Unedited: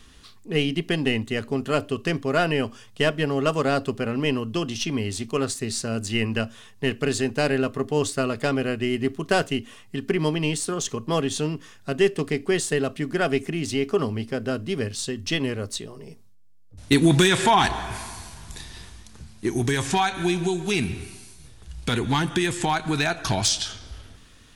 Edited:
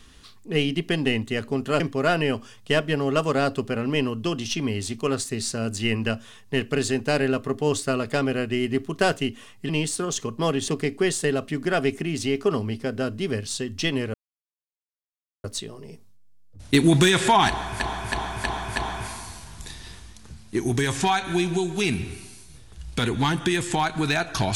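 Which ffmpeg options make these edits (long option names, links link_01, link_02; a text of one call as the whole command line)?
ffmpeg -i in.wav -filter_complex "[0:a]asplit=9[link_01][link_02][link_03][link_04][link_05][link_06][link_07][link_08][link_09];[link_01]atrim=end=1.802[link_10];[link_02]atrim=start=2.098:end=9.992[link_11];[link_03]atrim=start=10.378:end=11.372[link_12];[link_04]atrim=start=12.158:end=15.62,asetpts=PTS-STARTPTS,afade=type=out:start_time=3.458:duration=0.004:curve=hsin,apad=pad_dur=1.3[link_13];[link_05]atrim=start=15.62:end=17.982,asetpts=PTS-STARTPTS,afade=type=in:duration=0.004:curve=hsin[link_14];[link_06]atrim=start=17.658:end=17.982[link_15];[link_07]atrim=start=17.658:end=17.982[link_16];[link_08]atrim=start=17.658:end=17.982[link_17];[link_09]atrim=start=17.658[link_18];[link_10][link_11]acrossfade=duration=0.004:curve1=hsin:curve2=hsin[link_19];[link_19][link_12]acrossfade=duration=0.004:curve1=hsin:curve2=hsin[link_20];[link_13][link_14]concat=n=2:v=0:a=1[link_21];[link_20][link_21]acrossfade=duration=0.004:curve1=hsin:curve2=hsin[link_22];[link_22][link_15]acrossfade=duration=0.004:curve1=hsin:curve2=hsin[link_23];[link_23][link_16]acrossfade=duration=0.004:curve1=hsin:curve2=hsin[link_24];[link_24][link_17]acrossfade=duration=0.004:curve1=hsin:curve2=hsin[link_25];[link_25][link_18]acrossfade=duration=0.004:curve1=hsin:curve2=hsin" out.wav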